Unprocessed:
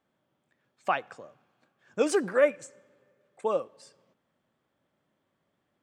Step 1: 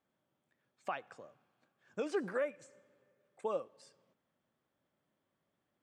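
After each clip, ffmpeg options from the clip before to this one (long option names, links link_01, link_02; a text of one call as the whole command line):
ffmpeg -i in.wav -filter_complex "[0:a]acrossover=split=5200[link_01][link_02];[link_02]acompressor=threshold=-52dB:ratio=4:attack=1:release=60[link_03];[link_01][link_03]amix=inputs=2:normalize=0,alimiter=limit=-19.5dB:level=0:latency=1:release=293,volume=-6.5dB" out.wav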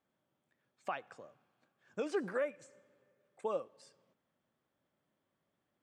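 ffmpeg -i in.wav -af anull out.wav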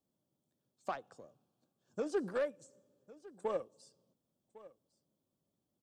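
ffmpeg -i in.wav -filter_complex "[0:a]acrossover=split=360|3500[link_01][link_02][link_03];[link_02]adynamicsmooth=sensitivity=4:basefreq=690[link_04];[link_01][link_04][link_03]amix=inputs=3:normalize=0,aecho=1:1:1104:0.106,volume=1dB" out.wav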